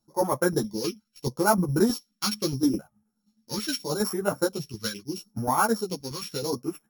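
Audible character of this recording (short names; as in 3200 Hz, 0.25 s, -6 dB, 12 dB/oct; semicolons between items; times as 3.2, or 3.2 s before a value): a buzz of ramps at a fixed pitch in blocks of 8 samples; phasing stages 2, 0.77 Hz, lowest notch 670–4100 Hz; tremolo saw down 9.5 Hz, depth 60%; a shimmering, thickened sound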